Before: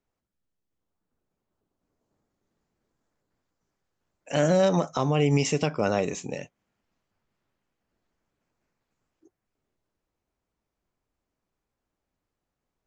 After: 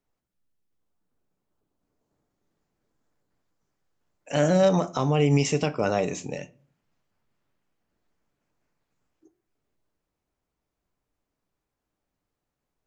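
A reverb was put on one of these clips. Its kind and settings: simulated room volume 310 m³, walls furnished, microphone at 0.39 m

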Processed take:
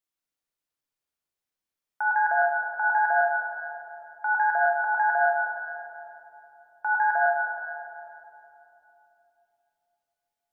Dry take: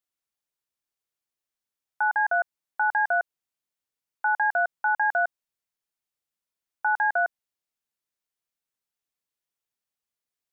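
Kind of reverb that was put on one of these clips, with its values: simulated room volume 150 m³, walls hard, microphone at 0.54 m; trim -3 dB

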